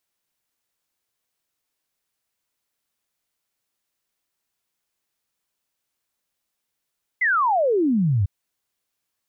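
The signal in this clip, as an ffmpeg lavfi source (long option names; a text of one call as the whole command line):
ffmpeg -f lavfi -i "aevalsrc='0.15*clip(min(t,1.05-t)/0.01,0,1)*sin(2*PI*2100*1.05/log(89/2100)*(exp(log(89/2100)*t/1.05)-1))':duration=1.05:sample_rate=44100" out.wav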